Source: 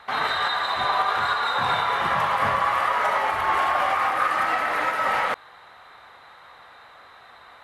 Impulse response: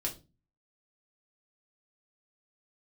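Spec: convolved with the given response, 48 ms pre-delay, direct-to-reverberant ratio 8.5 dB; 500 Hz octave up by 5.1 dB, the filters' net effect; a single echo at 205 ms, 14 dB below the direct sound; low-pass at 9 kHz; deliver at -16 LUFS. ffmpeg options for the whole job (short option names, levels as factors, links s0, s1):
-filter_complex "[0:a]lowpass=9000,equalizer=f=500:t=o:g=6.5,aecho=1:1:205:0.2,asplit=2[s0][s1];[1:a]atrim=start_sample=2205,adelay=48[s2];[s1][s2]afir=irnorm=-1:irlink=0,volume=0.282[s3];[s0][s3]amix=inputs=2:normalize=0,volume=1.68"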